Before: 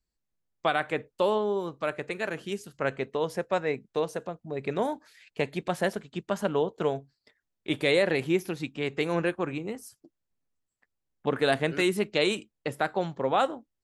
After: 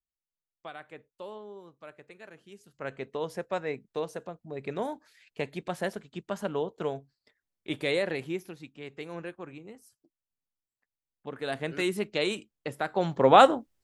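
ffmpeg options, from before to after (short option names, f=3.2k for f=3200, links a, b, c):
-af "volume=16dB,afade=t=in:st=2.54:d=0.6:silence=0.237137,afade=t=out:st=7.95:d=0.65:silence=0.421697,afade=t=in:st=11.36:d=0.49:silence=0.375837,afade=t=in:st=12.89:d=0.44:silence=0.251189"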